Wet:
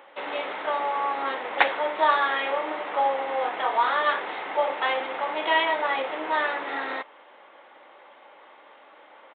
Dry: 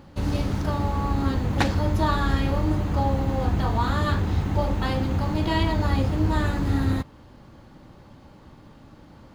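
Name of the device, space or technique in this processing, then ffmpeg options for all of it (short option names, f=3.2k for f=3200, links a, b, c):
musical greeting card: -af "lowpass=5.5k,aresample=8000,aresample=44100,highpass=f=510:w=0.5412,highpass=f=510:w=1.3066,equalizer=f=2.1k:t=o:w=0.32:g=6,volume=5dB"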